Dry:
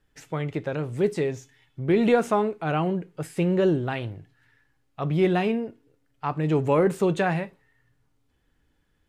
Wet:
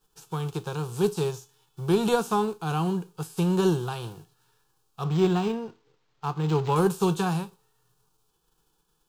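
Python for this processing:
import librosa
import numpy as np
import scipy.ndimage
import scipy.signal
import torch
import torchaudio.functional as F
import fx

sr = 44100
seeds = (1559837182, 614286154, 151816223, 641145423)

y = fx.envelope_flatten(x, sr, power=0.6)
y = fx.fixed_phaser(y, sr, hz=400.0, stages=8)
y = fx.resample_linear(y, sr, factor=4, at=(5.04, 6.76))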